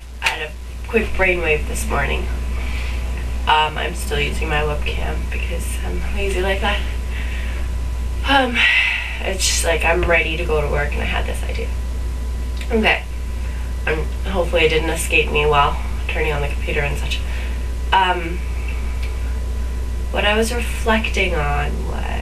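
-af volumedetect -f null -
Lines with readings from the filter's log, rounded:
mean_volume: -19.1 dB
max_volume: -2.1 dB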